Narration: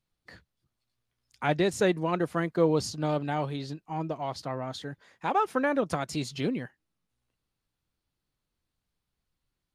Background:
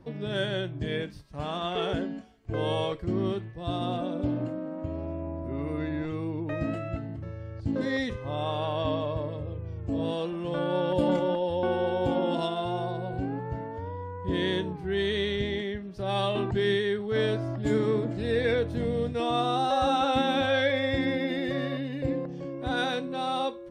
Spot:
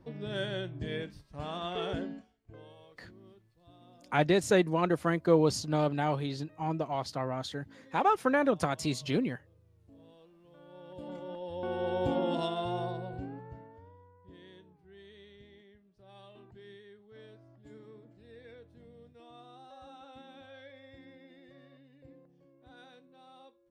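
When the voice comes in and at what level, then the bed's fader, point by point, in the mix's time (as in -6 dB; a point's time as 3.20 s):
2.70 s, 0.0 dB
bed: 2.11 s -5.5 dB
2.75 s -27.5 dB
10.56 s -27.5 dB
11.96 s -3.5 dB
12.85 s -3.5 dB
14.40 s -26.5 dB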